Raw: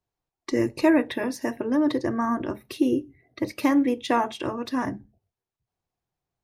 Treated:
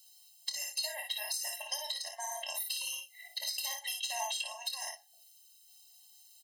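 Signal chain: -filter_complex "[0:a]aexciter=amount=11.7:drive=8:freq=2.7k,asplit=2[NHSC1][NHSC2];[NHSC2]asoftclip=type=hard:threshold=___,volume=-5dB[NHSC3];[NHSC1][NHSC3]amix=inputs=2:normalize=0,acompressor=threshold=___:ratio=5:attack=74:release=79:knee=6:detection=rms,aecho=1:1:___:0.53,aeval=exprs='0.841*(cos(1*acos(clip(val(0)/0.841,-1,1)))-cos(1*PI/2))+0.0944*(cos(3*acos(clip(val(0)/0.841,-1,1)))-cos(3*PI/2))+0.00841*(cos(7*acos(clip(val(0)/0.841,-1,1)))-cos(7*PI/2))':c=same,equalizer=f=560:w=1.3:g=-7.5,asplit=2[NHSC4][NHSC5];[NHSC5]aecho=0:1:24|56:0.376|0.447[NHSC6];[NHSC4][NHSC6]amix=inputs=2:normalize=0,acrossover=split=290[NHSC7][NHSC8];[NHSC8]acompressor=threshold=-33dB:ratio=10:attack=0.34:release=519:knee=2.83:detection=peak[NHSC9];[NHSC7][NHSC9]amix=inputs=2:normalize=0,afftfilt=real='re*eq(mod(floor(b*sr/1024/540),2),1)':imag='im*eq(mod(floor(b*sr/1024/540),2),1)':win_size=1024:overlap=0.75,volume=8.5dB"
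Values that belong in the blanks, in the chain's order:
-10dB, -19dB, 2.6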